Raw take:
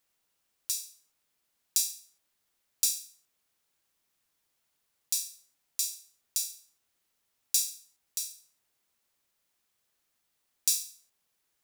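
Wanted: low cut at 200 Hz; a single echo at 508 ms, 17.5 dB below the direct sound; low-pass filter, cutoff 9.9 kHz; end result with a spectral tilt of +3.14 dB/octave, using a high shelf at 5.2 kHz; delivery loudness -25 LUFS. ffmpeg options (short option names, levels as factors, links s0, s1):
-af "highpass=200,lowpass=9900,highshelf=f=5200:g=8.5,aecho=1:1:508:0.133,volume=1.33"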